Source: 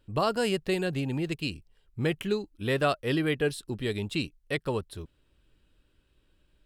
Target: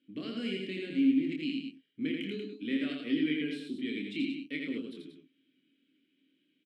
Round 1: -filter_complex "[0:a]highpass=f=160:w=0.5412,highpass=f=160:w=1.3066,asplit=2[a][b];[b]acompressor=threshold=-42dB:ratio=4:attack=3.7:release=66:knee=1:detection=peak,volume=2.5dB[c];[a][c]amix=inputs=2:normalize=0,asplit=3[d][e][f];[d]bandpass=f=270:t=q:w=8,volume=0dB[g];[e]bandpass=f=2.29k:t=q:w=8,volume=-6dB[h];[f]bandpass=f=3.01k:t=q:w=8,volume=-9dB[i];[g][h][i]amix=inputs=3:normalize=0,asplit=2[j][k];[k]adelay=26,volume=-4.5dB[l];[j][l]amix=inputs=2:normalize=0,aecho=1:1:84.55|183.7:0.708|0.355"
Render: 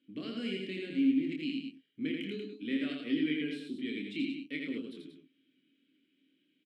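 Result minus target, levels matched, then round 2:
compressor: peak gain reduction +5 dB
-filter_complex "[0:a]highpass=f=160:w=0.5412,highpass=f=160:w=1.3066,asplit=2[a][b];[b]acompressor=threshold=-35.5dB:ratio=4:attack=3.7:release=66:knee=1:detection=peak,volume=2.5dB[c];[a][c]amix=inputs=2:normalize=0,asplit=3[d][e][f];[d]bandpass=f=270:t=q:w=8,volume=0dB[g];[e]bandpass=f=2.29k:t=q:w=8,volume=-6dB[h];[f]bandpass=f=3.01k:t=q:w=8,volume=-9dB[i];[g][h][i]amix=inputs=3:normalize=0,asplit=2[j][k];[k]adelay=26,volume=-4.5dB[l];[j][l]amix=inputs=2:normalize=0,aecho=1:1:84.55|183.7:0.708|0.355"

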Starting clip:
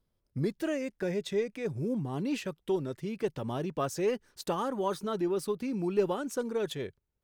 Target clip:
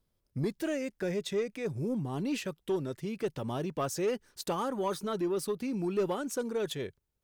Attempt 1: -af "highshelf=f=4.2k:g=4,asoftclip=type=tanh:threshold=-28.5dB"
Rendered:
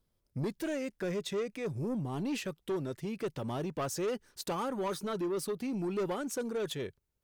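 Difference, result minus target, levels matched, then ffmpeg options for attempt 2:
soft clip: distortion +7 dB
-af "highshelf=f=4.2k:g=4,asoftclip=type=tanh:threshold=-22dB"

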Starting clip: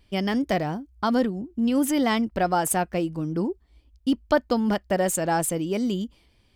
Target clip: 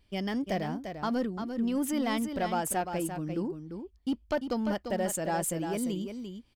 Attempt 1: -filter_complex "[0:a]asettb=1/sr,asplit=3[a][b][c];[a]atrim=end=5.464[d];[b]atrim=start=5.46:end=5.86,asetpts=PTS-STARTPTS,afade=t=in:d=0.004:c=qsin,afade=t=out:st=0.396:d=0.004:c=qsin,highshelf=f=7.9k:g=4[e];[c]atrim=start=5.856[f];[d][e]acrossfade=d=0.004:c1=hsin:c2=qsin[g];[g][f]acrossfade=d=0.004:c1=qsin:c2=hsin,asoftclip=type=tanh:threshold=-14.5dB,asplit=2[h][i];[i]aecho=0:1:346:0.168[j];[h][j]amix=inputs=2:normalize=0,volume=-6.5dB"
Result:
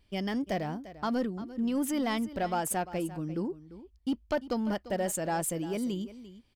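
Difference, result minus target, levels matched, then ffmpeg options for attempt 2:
echo-to-direct -8 dB
-filter_complex "[0:a]asettb=1/sr,asplit=3[a][b][c];[a]atrim=end=5.464[d];[b]atrim=start=5.46:end=5.86,asetpts=PTS-STARTPTS,afade=t=in:d=0.004:c=qsin,afade=t=out:st=0.396:d=0.004:c=qsin,highshelf=f=7.9k:g=4[e];[c]atrim=start=5.856[f];[d][e]acrossfade=d=0.004:c1=hsin:c2=qsin[g];[g][f]acrossfade=d=0.004:c1=qsin:c2=hsin,asoftclip=type=tanh:threshold=-14.5dB,asplit=2[h][i];[i]aecho=0:1:346:0.422[j];[h][j]amix=inputs=2:normalize=0,volume=-6.5dB"

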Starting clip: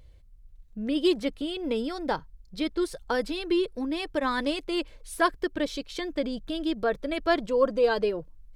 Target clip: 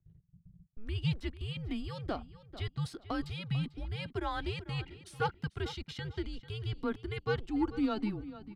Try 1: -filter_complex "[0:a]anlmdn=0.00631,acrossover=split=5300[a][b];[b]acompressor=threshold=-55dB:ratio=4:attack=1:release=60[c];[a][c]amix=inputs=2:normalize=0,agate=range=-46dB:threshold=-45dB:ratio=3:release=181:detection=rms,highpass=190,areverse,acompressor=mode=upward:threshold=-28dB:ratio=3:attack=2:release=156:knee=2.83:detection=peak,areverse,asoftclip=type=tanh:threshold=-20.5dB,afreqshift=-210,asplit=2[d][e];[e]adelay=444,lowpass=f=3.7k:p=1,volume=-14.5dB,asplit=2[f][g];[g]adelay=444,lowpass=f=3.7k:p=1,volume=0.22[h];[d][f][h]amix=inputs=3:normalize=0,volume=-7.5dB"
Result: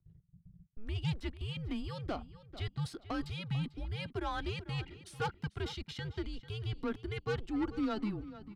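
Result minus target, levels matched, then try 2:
soft clip: distortion +13 dB
-filter_complex "[0:a]anlmdn=0.00631,acrossover=split=5300[a][b];[b]acompressor=threshold=-55dB:ratio=4:attack=1:release=60[c];[a][c]amix=inputs=2:normalize=0,agate=range=-46dB:threshold=-45dB:ratio=3:release=181:detection=rms,highpass=190,areverse,acompressor=mode=upward:threshold=-28dB:ratio=3:attack=2:release=156:knee=2.83:detection=peak,areverse,asoftclip=type=tanh:threshold=-11dB,afreqshift=-210,asplit=2[d][e];[e]adelay=444,lowpass=f=3.7k:p=1,volume=-14.5dB,asplit=2[f][g];[g]adelay=444,lowpass=f=3.7k:p=1,volume=0.22[h];[d][f][h]amix=inputs=3:normalize=0,volume=-7.5dB"

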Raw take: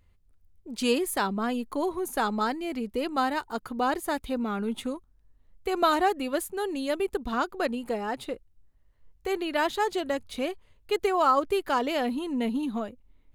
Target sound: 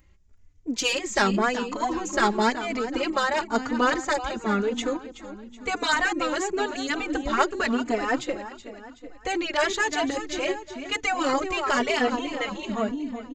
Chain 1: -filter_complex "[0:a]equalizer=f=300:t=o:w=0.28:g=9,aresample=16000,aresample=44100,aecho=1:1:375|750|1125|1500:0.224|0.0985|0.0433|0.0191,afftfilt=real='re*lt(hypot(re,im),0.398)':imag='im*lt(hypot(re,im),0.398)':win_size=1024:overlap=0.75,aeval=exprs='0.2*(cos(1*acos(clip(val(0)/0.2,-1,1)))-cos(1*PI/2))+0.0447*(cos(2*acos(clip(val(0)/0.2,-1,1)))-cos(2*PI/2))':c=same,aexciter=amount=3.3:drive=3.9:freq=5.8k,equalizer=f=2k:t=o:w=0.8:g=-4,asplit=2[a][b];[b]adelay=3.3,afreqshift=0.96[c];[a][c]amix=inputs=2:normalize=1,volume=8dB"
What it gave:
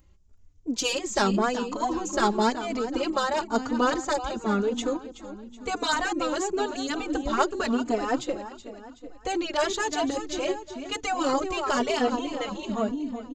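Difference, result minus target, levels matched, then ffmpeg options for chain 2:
2000 Hz band -4.5 dB
-filter_complex "[0:a]equalizer=f=300:t=o:w=0.28:g=9,aresample=16000,aresample=44100,aecho=1:1:375|750|1125|1500:0.224|0.0985|0.0433|0.0191,afftfilt=real='re*lt(hypot(re,im),0.398)':imag='im*lt(hypot(re,im),0.398)':win_size=1024:overlap=0.75,aeval=exprs='0.2*(cos(1*acos(clip(val(0)/0.2,-1,1)))-cos(1*PI/2))+0.0447*(cos(2*acos(clip(val(0)/0.2,-1,1)))-cos(2*PI/2))':c=same,aexciter=amount=3.3:drive=3.9:freq=5.8k,equalizer=f=2k:t=o:w=0.8:g=5,asplit=2[a][b];[b]adelay=3.3,afreqshift=0.96[c];[a][c]amix=inputs=2:normalize=1,volume=8dB"

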